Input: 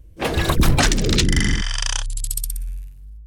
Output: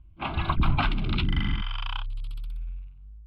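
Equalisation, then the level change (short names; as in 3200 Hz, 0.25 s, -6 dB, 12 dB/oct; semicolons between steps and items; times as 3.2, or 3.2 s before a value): air absorption 400 m; bell 1800 Hz +8.5 dB 2.4 oct; fixed phaser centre 1800 Hz, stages 6; -6.5 dB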